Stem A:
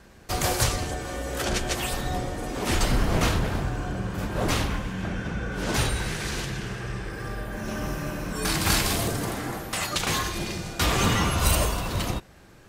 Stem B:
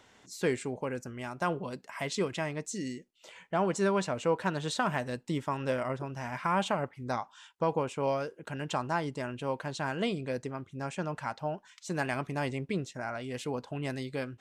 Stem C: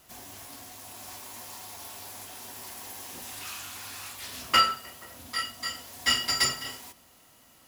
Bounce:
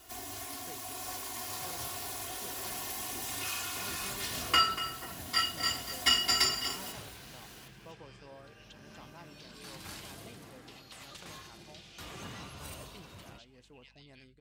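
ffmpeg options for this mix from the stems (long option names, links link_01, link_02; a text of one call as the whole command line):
ffmpeg -i stem1.wav -i stem2.wav -i stem3.wav -filter_complex "[0:a]highpass=80,adelay=950,volume=-16dB,asplit=2[link_01][link_02];[link_02]volume=-6.5dB[link_03];[1:a]aeval=exprs='val(0)+0.00631*(sin(2*PI*50*n/s)+sin(2*PI*2*50*n/s)/2+sin(2*PI*3*50*n/s)/3+sin(2*PI*4*50*n/s)/4+sin(2*PI*5*50*n/s)/5)':channel_layout=same,volume=-10dB,asplit=2[link_04][link_05];[link_05]volume=-12.5dB[link_06];[2:a]aecho=1:1:2.8:0.97,alimiter=limit=-13dB:level=0:latency=1:release=489,volume=-0.5dB,asplit=2[link_07][link_08];[link_08]volume=-12dB[link_09];[link_01][link_04]amix=inputs=2:normalize=0,asuperpass=centerf=3700:order=4:qfactor=1.3,acompressor=threshold=-52dB:ratio=6,volume=0dB[link_10];[link_03][link_06][link_09]amix=inputs=3:normalize=0,aecho=0:1:239:1[link_11];[link_07][link_10][link_11]amix=inputs=3:normalize=0" out.wav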